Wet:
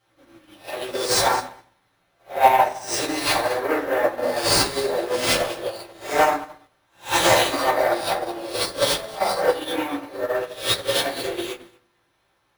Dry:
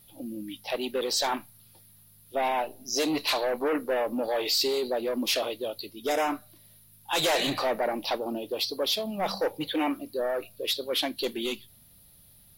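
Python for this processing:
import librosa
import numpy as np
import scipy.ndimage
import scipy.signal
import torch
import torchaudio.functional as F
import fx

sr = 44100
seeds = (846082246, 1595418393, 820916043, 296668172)

p1 = fx.spec_swells(x, sr, rise_s=0.54)
p2 = scipy.signal.sosfilt(scipy.signal.bessel(8, 380.0, 'highpass', norm='mag', fs=sr, output='sos'), p1)
p3 = fx.high_shelf(p2, sr, hz=5100.0, db=11.5)
p4 = fx.sample_hold(p3, sr, seeds[0], rate_hz=14000.0, jitter_pct=0)
p5 = 10.0 ** (-18.0 / 20.0) * np.tanh(p4 / 10.0 ** (-18.0 / 20.0))
p6 = p5 + fx.echo_feedback(p5, sr, ms=214, feedback_pct=16, wet_db=-12.0, dry=0)
p7 = fx.rev_fdn(p6, sr, rt60_s=0.99, lf_ratio=0.95, hf_ratio=0.3, size_ms=52.0, drr_db=-8.5)
p8 = fx.upward_expand(p7, sr, threshold_db=-36.0, expansion=2.5)
y = p8 * librosa.db_to_amplitude(4.5)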